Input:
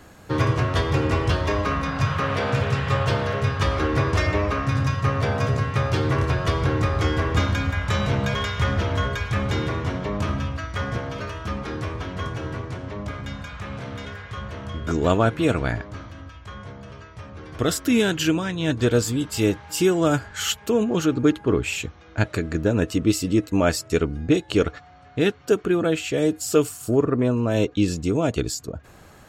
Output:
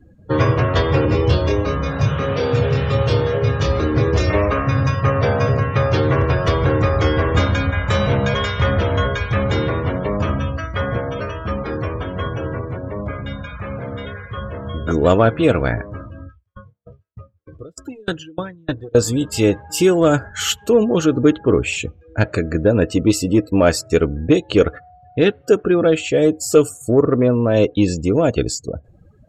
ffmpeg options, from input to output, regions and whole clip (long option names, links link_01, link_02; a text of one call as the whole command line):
ffmpeg -i in.wav -filter_complex "[0:a]asettb=1/sr,asplit=3[link_01][link_02][link_03];[link_01]atrim=end=1.054[link_04];[link_02]atrim=start=1.05:end=4.3,asetpts=PTS-STARTPTS,afade=type=in:duration=0.004:curve=qsin,afade=type=out:start_time=3.246:duration=0.004:curve=qsin,highpass=45,acrossover=split=480|3000[link_05][link_06][link_07];[link_06]acompressor=threshold=-34dB:ratio=4:attack=3.2:release=140:knee=2.83:detection=peak[link_08];[link_05][link_08][link_07]amix=inputs=3:normalize=0,asplit=2[link_09][link_10];[link_10]adelay=27,volume=-3dB[link_11];[link_09][link_11]amix=inputs=2:normalize=0,atrim=end_sample=143325[link_12];[link_03]atrim=start=4.296[link_13];[link_04][link_12]acrossfade=duration=0.004:curve1=hsin:curve2=qsin[link_14];[link_14][link_13]acrossfade=duration=0.004:curve1=qsin:curve2=hsin,asettb=1/sr,asplit=3[link_15][link_16][link_17];[link_15]atrim=end=16.264[link_18];[link_16]atrim=start=16.26:end=18.95,asetpts=PTS-STARTPTS,afade=type=in:duration=0.004:curve=qsin,afade=type=out:start_time=2.686:duration=0.004:curve=qsin,volume=16dB,asoftclip=hard,volume=-16dB,bandreject=frequency=230:width=5,aeval=exprs='val(0)*pow(10,-31*if(lt(mod(3.3*n/s,1),2*abs(3.3)/1000),1-mod(3.3*n/s,1)/(2*abs(3.3)/1000),(mod(3.3*n/s,1)-2*abs(3.3)/1000)/(1-2*abs(3.3)/1000))/20)':channel_layout=same[link_19];[link_17]atrim=start=18.946[link_20];[link_18][link_19]acrossfade=duration=0.004:curve1=hsin:curve2=qsin[link_21];[link_21][link_20]acrossfade=duration=0.004:curve1=qsin:curve2=hsin,afftdn=noise_reduction=31:noise_floor=-39,equalizer=frequency=520:width_type=o:width=0.41:gain=6,acontrast=21" out.wav